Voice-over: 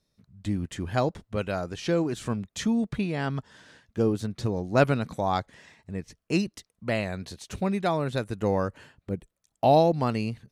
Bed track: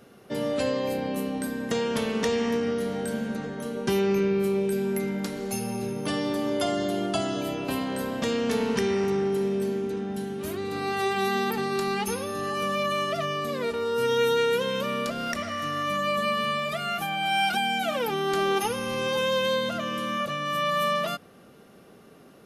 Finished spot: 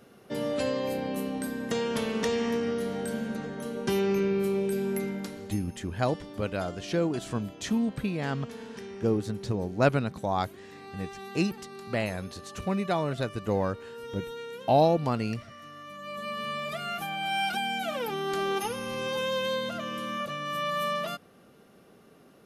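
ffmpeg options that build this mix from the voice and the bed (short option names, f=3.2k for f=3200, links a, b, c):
-filter_complex "[0:a]adelay=5050,volume=-2dB[a];[1:a]volume=9.5dB,afade=t=out:st=4.99:d=0.66:silence=0.199526,afade=t=in:st=15.97:d=0.74:silence=0.251189[b];[a][b]amix=inputs=2:normalize=0"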